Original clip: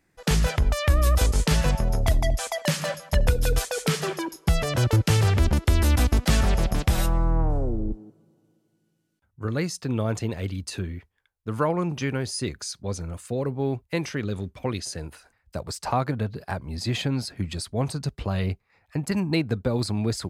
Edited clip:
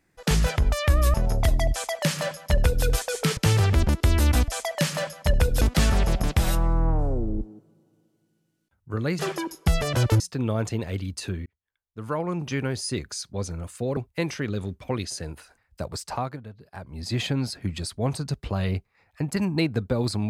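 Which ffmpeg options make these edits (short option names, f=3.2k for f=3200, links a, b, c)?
-filter_complex "[0:a]asplit=11[a][b][c][d][e][f][g][h][i][j][k];[a]atrim=end=1.142[l];[b]atrim=start=1.768:end=4.002[m];[c]atrim=start=5.008:end=6.122[n];[d]atrim=start=2.348:end=3.482[o];[e]atrim=start=6.118:end=9.702[p];[f]atrim=start=3.998:end=5.012[q];[g]atrim=start=9.698:end=10.96,asetpts=PTS-STARTPTS,afade=t=out:st=1.258:d=0.004:c=hsin[r];[h]atrim=start=10.96:end=13.472,asetpts=PTS-STARTPTS,afade=t=in:d=1.16[s];[i]atrim=start=13.718:end=16.18,asetpts=PTS-STARTPTS,afade=t=out:st=1.982:d=0.48:silence=0.199526[t];[j]atrim=start=16.18:end=16.44,asetpts=PTS-STARTPTS,volume=-14dB[u];[k]atrim=start=16.44,asetpts=PTS-STARTPTS,afade=t=in:d=0.48:silence=0.199526[v];[l][m]acrossfade=d=0.004:c1=hsin:c2=hsin[w];[w][n]acrossfade=d=0.004:c1=hsin:c2=hsin[x];[x][o]acrossfade=d=0.004:c1=hsin:c2=hsin[y];[y][p]acrossfade=d=0.004:c1=hsin:c2=hsin[z];[z][q]acrossfade=d=0.004:c1=hsin:c2=hsin[aa];[r][s]concat=n=2:v=0:a=1[ab];[aa][ab]acrossfade=d=0.004:c1=hsin:c2=hsin[ac];[t][u][v]concat=n=3:v=0:a=1[ad];[ac][ad]acrossfade=d=0.004:c1=hsin:c2=hsin"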